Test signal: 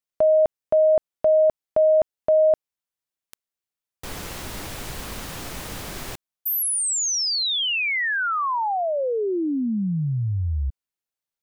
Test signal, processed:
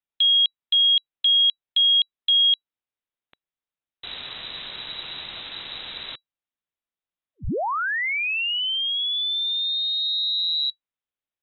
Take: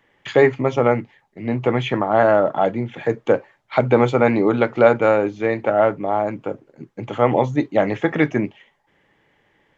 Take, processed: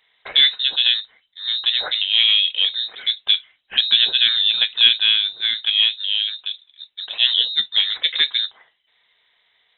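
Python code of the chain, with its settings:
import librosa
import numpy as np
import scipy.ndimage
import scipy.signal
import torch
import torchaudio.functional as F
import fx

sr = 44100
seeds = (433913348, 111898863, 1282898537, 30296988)

y = fx.cheby_harmonics(x, sr, harmonics=(7,), levels_db=(-43,), full_scale_db=-1.5)
y = fx.freq_invert(y, sr, carrier_hz=3900)
y = F.gain(torch.from_numpy(y), -1.0).numpy()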